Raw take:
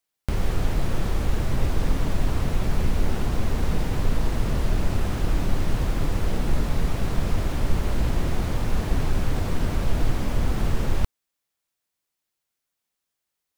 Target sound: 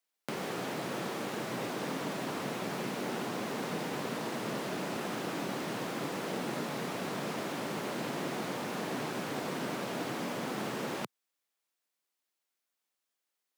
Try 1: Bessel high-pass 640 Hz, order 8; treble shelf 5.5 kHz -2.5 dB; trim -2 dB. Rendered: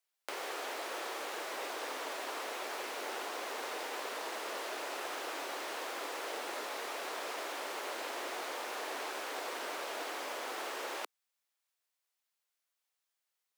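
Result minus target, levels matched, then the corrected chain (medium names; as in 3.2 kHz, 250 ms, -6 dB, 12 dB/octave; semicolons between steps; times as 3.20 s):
250 Hz band -12.0 dB
Bessel high-pass 270 Hz, order 8; treble shelf 5.5 kHz -2.5 dB; trim -2 dB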